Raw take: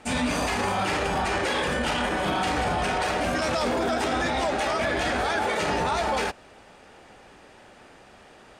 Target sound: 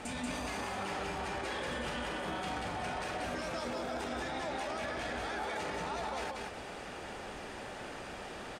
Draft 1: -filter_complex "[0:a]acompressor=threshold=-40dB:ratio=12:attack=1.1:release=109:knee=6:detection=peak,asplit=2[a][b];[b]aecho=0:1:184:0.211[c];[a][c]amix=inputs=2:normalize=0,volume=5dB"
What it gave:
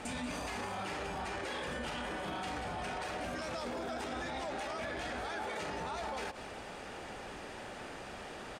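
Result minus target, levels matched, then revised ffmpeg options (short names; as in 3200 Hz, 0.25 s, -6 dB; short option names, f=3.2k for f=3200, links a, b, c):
echo-to-direct -10.5 dB
-filter_complex "[0:a]acompressor=threshold=-40dB:ratio=12:attack=1.1:release=109:knee=6:detection=peak,asplit=2[a][b];[b]aecho=0:1:184:0.708[c];[a][c]amix=inputs=2:normalize=0,volume=5dB"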